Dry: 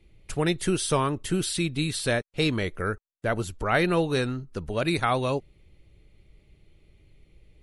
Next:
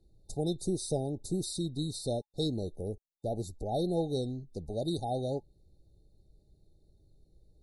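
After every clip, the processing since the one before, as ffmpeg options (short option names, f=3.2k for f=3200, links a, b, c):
-af "afftfilt=real='re*(1-between(b*sr/4096,850,3600))':imag='im*(1-between(b*sr/4096,850,3600))':win_size=4096:overlap=0.75,adynamicequalizer=threshold=0.00708:dfrequency=2000:dqfactor=0.7:tfrequency=2000:tqfactor=0.7:attack=5:release=100:ratio=0.375:range=2:mode=cutabove:tftype=highshelf,volume=-6.5dB"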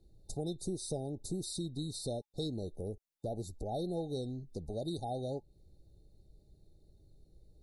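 -af "acompressor=threshold=-41dB:ratio=2,volume=1.5dB"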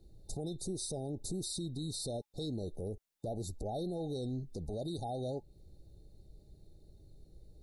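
-af "alimiter=level_in=11dB:limit=-24dB:level=0:latency=1:release=37,volume=-11dB,volume=4.5dB"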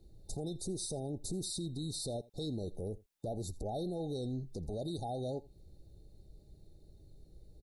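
-af "aecho=1:1:83:0.0794"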